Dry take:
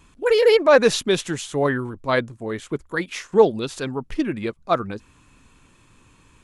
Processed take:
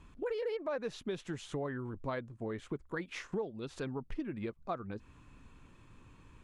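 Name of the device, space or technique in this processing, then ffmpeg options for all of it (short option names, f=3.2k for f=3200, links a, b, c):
ASMR close-microphone chain: -af "aemphasis=mode=reproduction:type=75fm,lowshelf=f=150:g=4,acompressor=threshold=-30dB:ratio=6,highshelf=f=9.5k:g=5.5,volume=-5.5dB"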